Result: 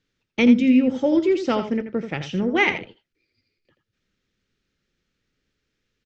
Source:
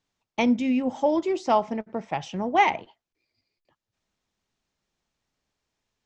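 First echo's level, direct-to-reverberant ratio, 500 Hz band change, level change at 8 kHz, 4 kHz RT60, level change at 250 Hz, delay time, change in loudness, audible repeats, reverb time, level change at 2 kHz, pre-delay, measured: -9.5 dB, none, +3.5 dB, n/a, none, +7.5 dB, 83 ms, +4.5 dB, 1, none, +6.5 dB, none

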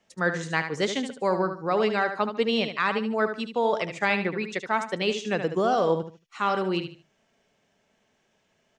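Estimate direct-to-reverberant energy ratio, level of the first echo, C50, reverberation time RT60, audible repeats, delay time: none, -8.5 dB, none, none, 3, 74 ms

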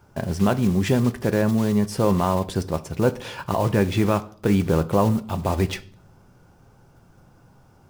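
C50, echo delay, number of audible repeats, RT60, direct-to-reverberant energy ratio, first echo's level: 19.5 dB, none, none, 0.50 s, 10.5 dB, none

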